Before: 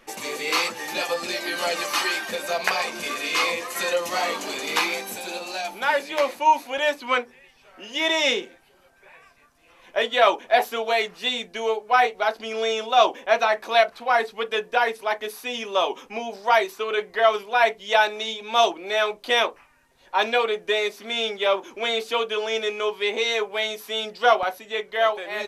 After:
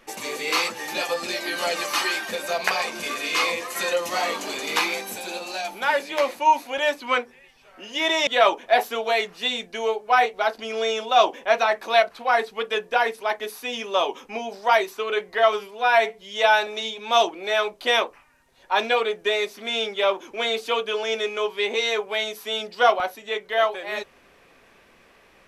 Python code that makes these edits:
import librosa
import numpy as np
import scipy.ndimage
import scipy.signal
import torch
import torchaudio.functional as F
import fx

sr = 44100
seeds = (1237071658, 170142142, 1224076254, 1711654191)

y = fx.edit(x, sr, fx.cut(start_s=8.27, length_s=1.81),
    fx.stretch_span(start_s=17.34, length_s=0.76, factor=1.5), tone=tone)